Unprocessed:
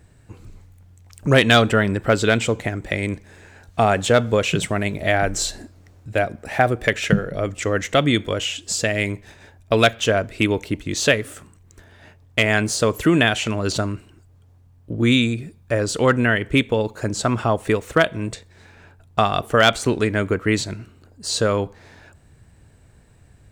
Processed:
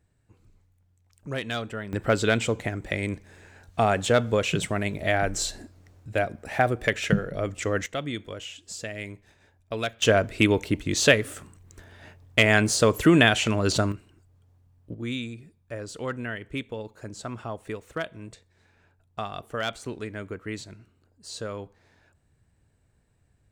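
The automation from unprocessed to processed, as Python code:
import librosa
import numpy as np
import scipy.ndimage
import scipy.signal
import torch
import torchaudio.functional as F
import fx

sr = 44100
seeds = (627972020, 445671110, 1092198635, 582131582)

y = fx.gain(x, sr, db=fx.steps((0.0, -17.0), (1.93, -5.0), (7.86, -14.0), (10.02, -1.0), (13.92, -8.0), (14.94, -15.0)))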